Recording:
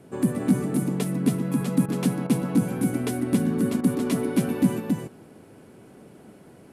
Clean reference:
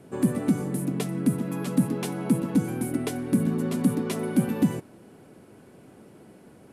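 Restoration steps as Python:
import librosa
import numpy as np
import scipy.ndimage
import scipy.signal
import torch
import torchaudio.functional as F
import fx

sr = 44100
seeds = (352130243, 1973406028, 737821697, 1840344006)

y = fx.fix_interpolate(x, sr, at_s=(1.86, 2.27, 3.81), length_ms=24.0)
y = fx.fix_echo_inverse(y, sr, delay_ms=276, level_db=-3.0)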